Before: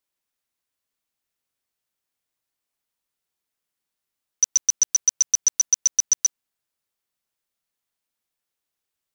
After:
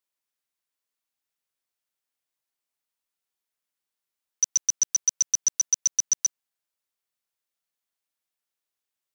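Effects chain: low shelf 290 Hz -7.5 dB; gain -3.5 dB

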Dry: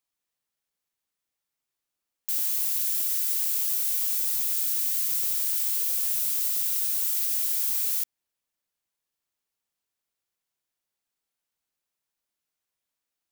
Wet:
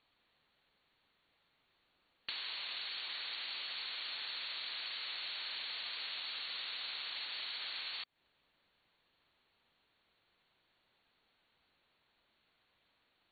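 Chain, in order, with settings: brick-wall FIR low-pass 4500 Hz; compressor 10:1, threshold -55 dBFS, peak gain reduction 12.5 dB; gain +15.5 dB

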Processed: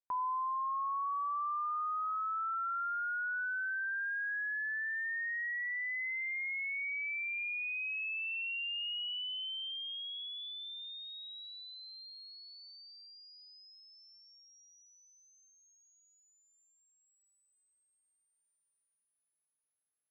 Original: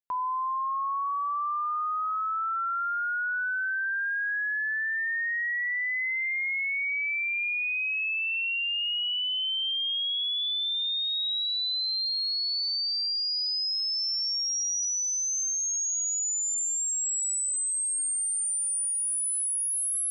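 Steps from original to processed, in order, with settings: LPF 2400 Hz 24 dB/oct; vocal rider within 4 dB; gain -5.5 dB

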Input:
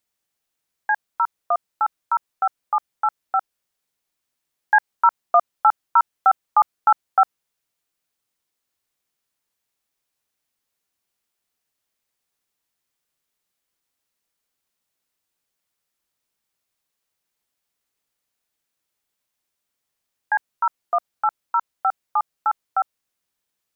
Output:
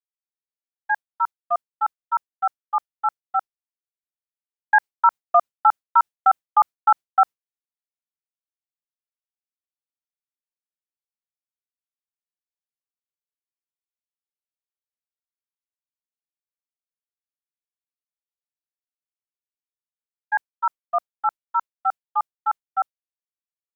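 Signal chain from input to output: expander -18 dBFS

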